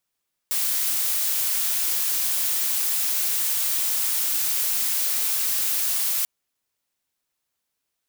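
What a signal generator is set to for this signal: noise blue, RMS -23.5 dBFS 5.74 s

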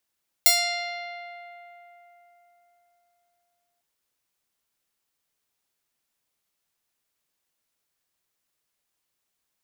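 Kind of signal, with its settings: plucked string F5, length 3.35 s, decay 3.95 s, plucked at 0.44, bright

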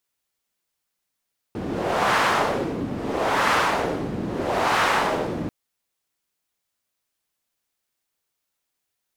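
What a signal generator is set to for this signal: wind-like swept noise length 3.94 s, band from 250 Hz, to 1200 Hz, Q 1.2, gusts 3, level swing 9.5 dB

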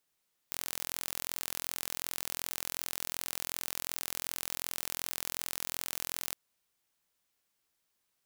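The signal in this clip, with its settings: pulse train 42.7/s, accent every 0, -8.5 dBFS 5.83 s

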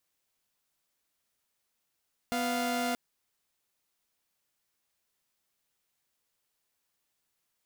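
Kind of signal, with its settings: chord B3/F5 saw, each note -29 dBFS 0.63 s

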